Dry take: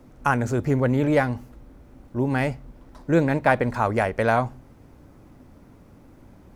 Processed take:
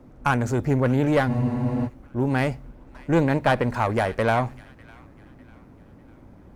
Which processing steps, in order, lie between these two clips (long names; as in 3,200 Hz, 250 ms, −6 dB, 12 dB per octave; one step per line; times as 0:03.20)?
one-sided soft clipper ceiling −16.5 dBFS
delay with a high-pass on its return 600 ms, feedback 46%, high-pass 1,700 Hz, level −17 dB
frozen spectrum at 0:01.30, 0.58 s
one half of a high-frequency compander decoder only
level +1.5 dB